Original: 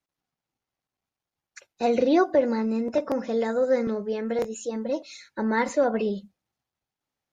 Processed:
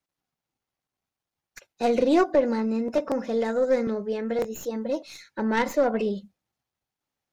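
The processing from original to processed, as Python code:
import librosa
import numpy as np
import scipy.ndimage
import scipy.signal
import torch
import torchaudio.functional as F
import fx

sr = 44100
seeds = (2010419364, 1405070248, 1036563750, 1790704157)

y = fx.tracing_dist(x, sr, depth_ms=0.16)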